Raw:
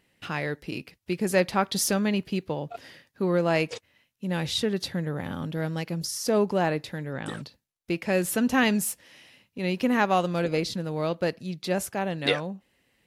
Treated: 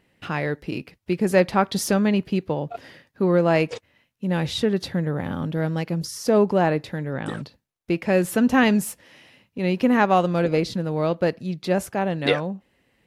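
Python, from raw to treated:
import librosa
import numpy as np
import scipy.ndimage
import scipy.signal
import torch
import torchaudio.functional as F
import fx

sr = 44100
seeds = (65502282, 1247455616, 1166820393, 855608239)

y = fx.high_shelf(x, sr, hz=2600.0, db=-8.5)
y = y * 10.0 ** (5.5 / 20.0)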